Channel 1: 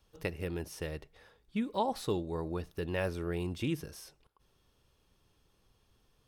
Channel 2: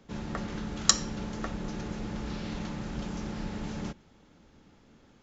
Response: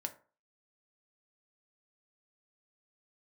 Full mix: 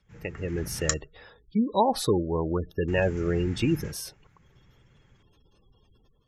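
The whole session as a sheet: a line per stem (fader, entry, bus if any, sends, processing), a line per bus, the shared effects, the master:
−1.0 dB, 0.00 s, no send, gate on every frequency bin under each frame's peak −20 dB strong; high-shelf EQ 3,900 Hz +10.5 dB
−14.0 dB, 0.00 s, muted 0:00.94–0:02.88, send −15.5 dB, octave-band graphic EQ 125/250/500/1,000/2,000/4,000/8,000 Hz +12/−12/−11/−4/+9/−11/+7 dB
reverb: on, RT60 0.40 s, pre-delay 3 ms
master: high-shelf EQ 4,900 Hz −5.5 dB; automatic gain control gain up to 10 dB

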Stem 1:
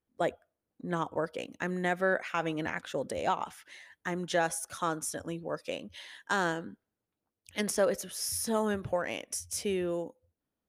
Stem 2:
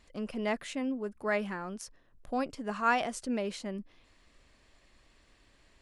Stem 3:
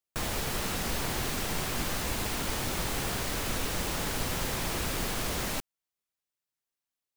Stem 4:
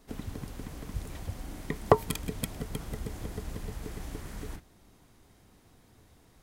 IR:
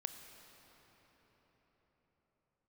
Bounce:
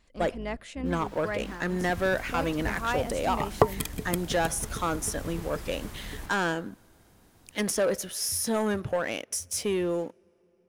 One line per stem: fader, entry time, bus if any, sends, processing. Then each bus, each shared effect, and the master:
−3.0 dB, 0.00 s, send −23.5 dB, leveller curve on the samples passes 2
−3.5 dB, 0.00 s, send −24 dB, sub-octave generator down 2 octaves, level −1 dB
−8.0 dB, 0.70 s, muted 0:02.80–0:04.60, no send, high-pass filter 870 Hz 24 dB per octave; spectral tilt −4 dB per octave; amplitude modulation by smooth noise
0.0 dB, 1.70 s, no send, high-shelf EQ 9,100 Hz +6 dB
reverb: on, RT60 5.1 s, pre-delay 22 ms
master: no processing

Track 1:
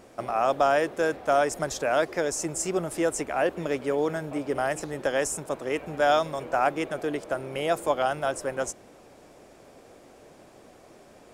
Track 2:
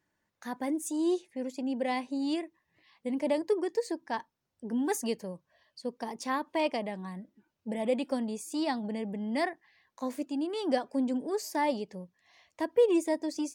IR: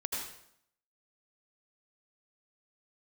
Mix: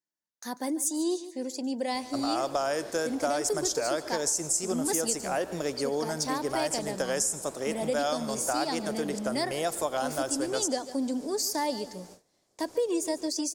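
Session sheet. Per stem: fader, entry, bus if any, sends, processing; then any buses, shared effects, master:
−3.0 dB, 1.95 s, send −16.5 dB, no echo send, pitch vibrato 0.92 Hz 37 cents
+1.5 dB, 0.00 s, no send, echo send −16.5 dB, high-pass filter 170 Hz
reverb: on, RT60 0.70 s, pre-delay 73 ms
echo: repeating echo 145 ms, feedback 38%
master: noise gate with hold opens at −38 dBFS; high shelf with overshoot 3,700 Hz +9.5 dB, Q 1.5; downward compressor 4 to 1, threshold −25 dBFS, peak gain reduction 7.5 dB

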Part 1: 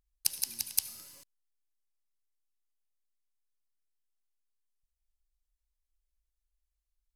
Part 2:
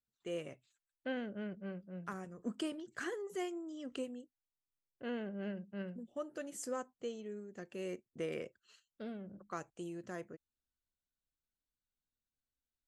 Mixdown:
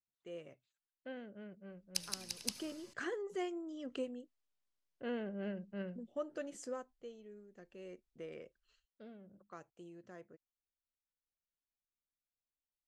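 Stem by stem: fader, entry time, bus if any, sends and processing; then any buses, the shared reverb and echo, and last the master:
−2.5 dB, 1.70 s, no send, no processing
0:02.48 −9 dB → 0:02.93 −0.5 dB → 0:06.58 −0.5 dB → 0:06.93 −10 dB, 0.00 s, no send, no processing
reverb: not used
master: low-pass filter 6,100 Hz 12 dB per octave; parametric band 540 Hz +2.5 dB

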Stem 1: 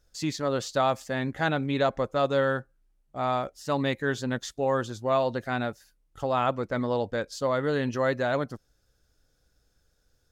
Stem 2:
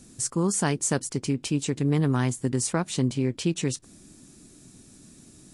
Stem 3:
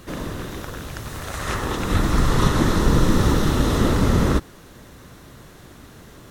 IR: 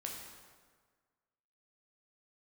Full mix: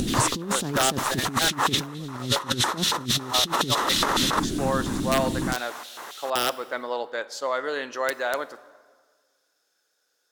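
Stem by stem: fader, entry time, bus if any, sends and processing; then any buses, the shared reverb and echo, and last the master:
−3.0 dB, 0.00 s, send −10.5 dB, high-pass filter 840 Hz 12 dB per octave; wrap-around overflow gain 18.5 dB
−1.5 dB, 0.00 s, no send, spectral tilt −2 dB per octave; upward compression, threshold −21 dBFS
+3.0 dB, 0.00 s, no send, auto-filter high-pass square 3.6 Hz 930–3,500 Hz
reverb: on, RT60 1.6 s, pre-delay 7 ms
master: parametric band 330 Hz +7 dB 1.4 octaves; compressor whose output falls as the input rises −23 dBFS, ratio −0.5

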